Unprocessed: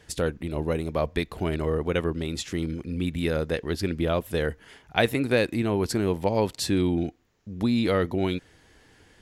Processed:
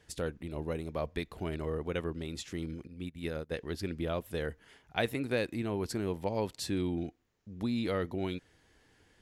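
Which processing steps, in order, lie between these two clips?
2.87–3.51 upward expander 2.5:1, over -35 dBFS; gain -9 dB

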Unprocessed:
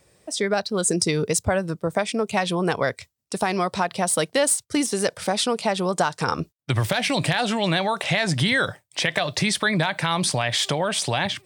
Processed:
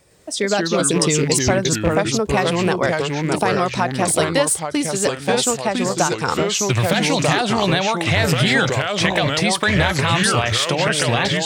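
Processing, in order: rattling part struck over -25 dBFS, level -22 dBFS; echoes that change speed 0.107 s, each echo -3 st, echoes 2; 4.42–6.24 upward expander 1.5:1, over -29 dBFS; gain +3 dB

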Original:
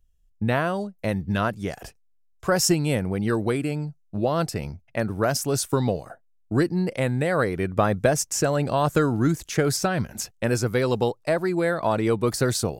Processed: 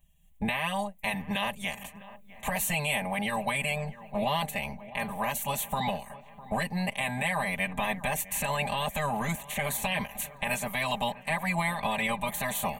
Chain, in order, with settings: spectral limiter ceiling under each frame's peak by 21 dB; recorder AGC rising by 8.8 dB/s; comb 5 ms, depth 99%; limiter -10.5 dBFS, peak gain reduction 8.5 dB; fixed phaser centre 1400 Hz, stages 6; dark delay 0.654 s, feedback 54%, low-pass 2000 Hz, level -17 dB; gain -5 dB

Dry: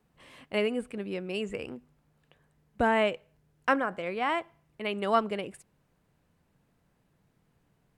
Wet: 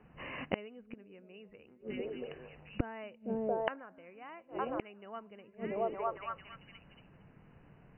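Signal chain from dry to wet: brick-wall FIR low-pass 3000 Hz; delay with a stepping band-pass 0.227 s, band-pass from 200 Hz, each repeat 0.7 oct, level -10.5 dB; flipped gate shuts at -31 dBFS, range -31 dB; gain +10.5 dB

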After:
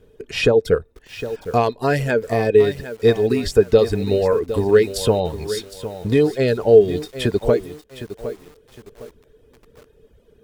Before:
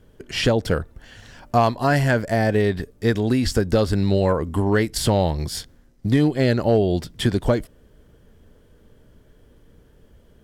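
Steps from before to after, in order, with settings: small resonant body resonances 440/2500/3700 Hz, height 14 dB, ringing for 50 ms; reverb removal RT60 0.89 s; lo-fi delay 0.76 s, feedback 35%, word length 6-bit, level -12 dB; gain -1.5 dB

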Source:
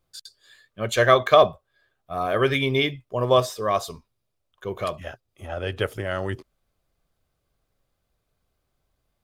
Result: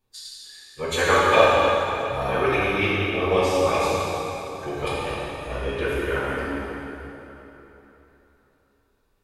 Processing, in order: small resonant body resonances 2500/3900 Hz, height 10 dB, ringing for 40 ms; harmonic-percussive split percussive +6 dB; formant-preserving pitch shift -5.5 st; in parallel at 0 dB: compressor, threshold -24 dBFS, peak gain reduction 16 dB; on the sum: plate-style reverb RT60 3.5 s, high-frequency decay 0.8×, DRR -8 dB; gain -12.5 dB

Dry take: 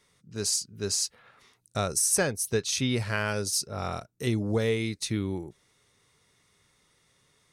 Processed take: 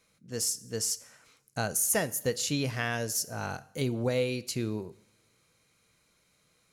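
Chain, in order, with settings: two-slope reverb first 0.77 s, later 2 s, from -18 dB, DRR 15.5 dB; varispeed +12%; gain -2.5 dB

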